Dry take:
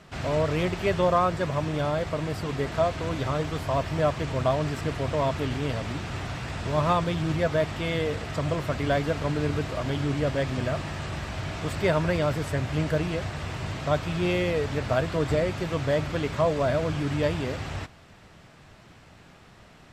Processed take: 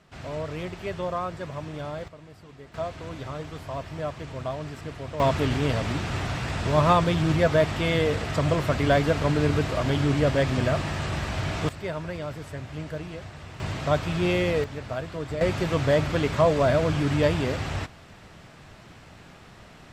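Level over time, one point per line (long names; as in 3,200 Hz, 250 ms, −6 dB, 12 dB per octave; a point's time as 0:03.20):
−7.5 dB
from 0:02.08 −17.5 dB
from 0:02.74 −7.5 dB
from 0:05.20 +4 dB
from 0:11.69 −8.5 dB
from 0:13.60 +1.5 dB
from 0:14.64 −7 dB
from 0:15.41 +3.5 dB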